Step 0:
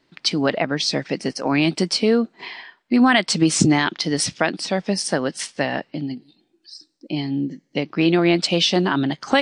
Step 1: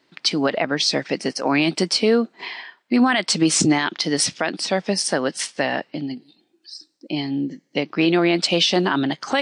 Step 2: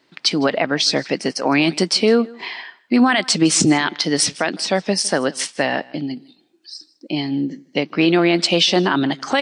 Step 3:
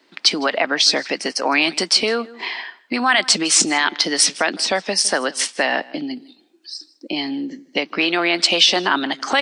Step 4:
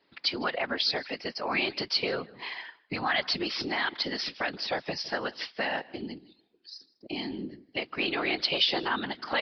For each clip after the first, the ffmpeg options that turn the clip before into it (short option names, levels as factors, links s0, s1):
-af "highpass=f=260:p=1,alimiter=level_in=2.82:limit=0.891:release=50:level=0:latency=1,volume=0.473"
-af "aecho=1:1:158:0.0708,volume=1.33"
-filter_complex "[0:a]highpass=f=210:w=0.5412,highpass=f=210:w=1.3066,acrossover=split=710[s0][s1];[s0]acompressor=threshold=0.0447:ratio=6[s2];[s2][s1]amix=inputs=2:normalize=0,volume=1.41"
-af "aresample=11025,aresample=44100,afftfilt=real='hypot(re,im)*cos(2*PI*random(0))':imag='hypot(re,im)*sin(2*PI*random(1))':win_size=512:overlap=0.75,volume=0.562"